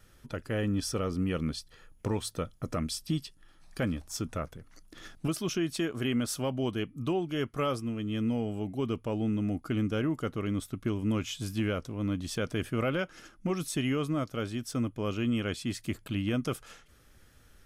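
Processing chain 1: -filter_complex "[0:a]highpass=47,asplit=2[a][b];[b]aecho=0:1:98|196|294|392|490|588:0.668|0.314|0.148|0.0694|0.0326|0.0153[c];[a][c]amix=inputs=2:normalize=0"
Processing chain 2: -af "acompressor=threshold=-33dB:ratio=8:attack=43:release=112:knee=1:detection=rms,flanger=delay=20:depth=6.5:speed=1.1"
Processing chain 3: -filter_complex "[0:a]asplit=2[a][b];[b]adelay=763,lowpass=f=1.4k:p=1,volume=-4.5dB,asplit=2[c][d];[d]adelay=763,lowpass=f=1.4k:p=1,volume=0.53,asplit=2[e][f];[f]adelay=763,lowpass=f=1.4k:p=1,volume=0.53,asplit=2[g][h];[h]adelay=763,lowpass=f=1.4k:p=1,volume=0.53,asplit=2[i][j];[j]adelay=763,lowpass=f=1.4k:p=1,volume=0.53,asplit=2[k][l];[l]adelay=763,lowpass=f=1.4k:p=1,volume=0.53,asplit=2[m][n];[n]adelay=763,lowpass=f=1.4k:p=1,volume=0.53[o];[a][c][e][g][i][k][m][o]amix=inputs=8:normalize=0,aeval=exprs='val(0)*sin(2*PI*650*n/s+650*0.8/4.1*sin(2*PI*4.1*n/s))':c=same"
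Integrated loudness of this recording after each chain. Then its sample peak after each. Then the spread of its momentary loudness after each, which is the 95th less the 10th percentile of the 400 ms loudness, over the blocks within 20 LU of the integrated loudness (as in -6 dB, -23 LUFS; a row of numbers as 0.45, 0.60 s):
-31.0, -39.5, -34.0 LUFS; -16.0, -24.5, -17.5 dBFS; 7, 7, 6 LU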